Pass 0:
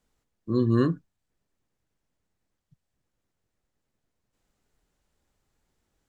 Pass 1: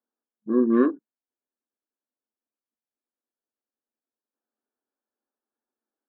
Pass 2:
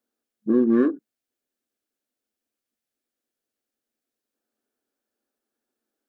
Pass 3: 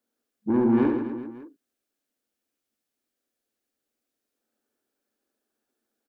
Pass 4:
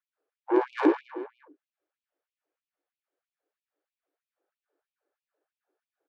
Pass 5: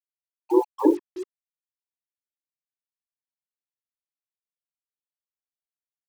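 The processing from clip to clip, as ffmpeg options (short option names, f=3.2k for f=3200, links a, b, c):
-af "afftfilt=real='re*between(b*sr/4096,210,1800)':imag='im*between(b*sr/4096,210,1800)':win_size=4096:overlap=0.75,aemphasis=mode=reproduction:type=cd,afwtdn=0.00708,volume=4dB"
-filter_complex "[0:a]asplit=2[a][b];[b]asoftclip=type=hard:threshold=-19.5dB,volume=-11dB[c];[a][c]amix=inputs=2:normalize=0,equalizer=f=970:t=o:w=0.56:g=-8.5,acompressor=threshold=-24dB:ratio=2.5,volume=6dB"
-af "asoftclip=type=tanh:threshold=-17.5dB,aecho=1:1:70|157.5|266.9|403.6|574.5:0.631|0.398|0.251|0.158|0.1"
-af "adynamicsmooth=sensitivity=4:basefreq=1.5k,afftfilt=real='re*gte(b*sr/1024,260*pow(2400/260,0.5+0.5*sin(2*PI*3.1*pts/sr)))':imag='im*gte(b*sr/1024,260*pow(2400/260,0.5+0.5*sin(2*PI*3.1*pts/sr)))':win_size=1024:overlap=0.75,volume=6dB"
-af "bandreject=f=50:t=h:w=6,bandreject=f=100:t=h:w=6,bandreject=f=150:t=h:w=6,bandreject=f=200:t=h:w=6,bandreject=f=250:t=h:w=6,bandreject=f=300:t=h:w=6,bandreject=f=350:t=h:w=6,bandreject=f=400:t=h:w=6,bandreject=f=450:t=h:w=6,afftfilt=real='re*gte(hypot(re,im),0.158)':imag='im*gte(hypot(re,im),0.158)':win_size=1024:overlap=0.75,acrusher=bits=7:mix=0:aa=0.5,volume=4.5dB"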